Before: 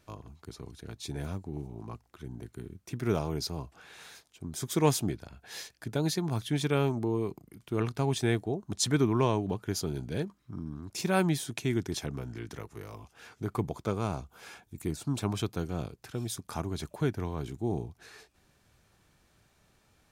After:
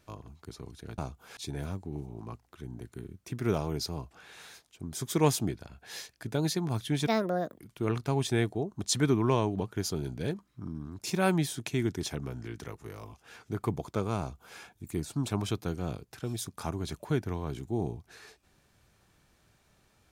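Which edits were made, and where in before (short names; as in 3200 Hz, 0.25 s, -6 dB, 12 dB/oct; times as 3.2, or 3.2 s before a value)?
6.68–7.5 speed 158%
14.1–14.49 copy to 0.98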